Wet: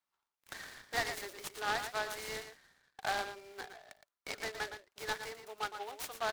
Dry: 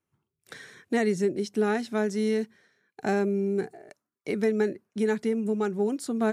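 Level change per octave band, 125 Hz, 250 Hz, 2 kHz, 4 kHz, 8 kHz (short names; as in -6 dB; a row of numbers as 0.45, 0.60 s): -20.0, -28.5, -2.5, +2.5, -1.5 dB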